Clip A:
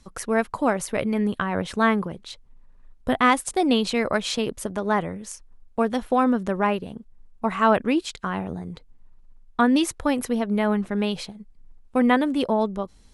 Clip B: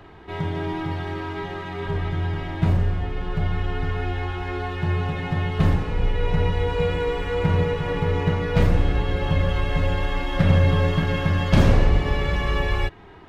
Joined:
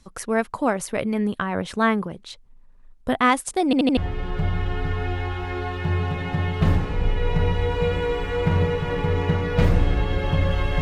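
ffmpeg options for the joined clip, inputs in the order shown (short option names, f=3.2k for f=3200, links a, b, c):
-filter_complex "[0:a]apad=whole_dur=10.81,atrim=end=10.81,asplit=4[a][b][c][d];[a]atrim=end=3.732[e];[b]atrim=start=3.648:end=3.732[f];[c]atrim=start=3.648:end=3.732[g];[d]atrim=start=3.648:end=3.732[h];[1:a]atrim=start=2.948:end=9.79[i];[e][f]acrossfade=d=0.004:c1=hsin:c2=hsin[j];[j][g]acrossfade=d=0.004:c1=hsin:c2=hsin[k];[k][h]acrossfade=d=0.004:c1=hsin:c2=hsin[l];[l][i]acrossfade=d=0.004:c1=hsin:c2=hsin"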